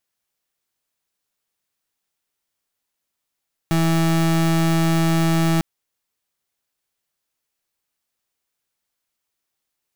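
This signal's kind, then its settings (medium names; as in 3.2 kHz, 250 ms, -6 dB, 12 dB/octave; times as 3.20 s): pulse 164 Hz, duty 32% -17.5 dBFS 1.90 s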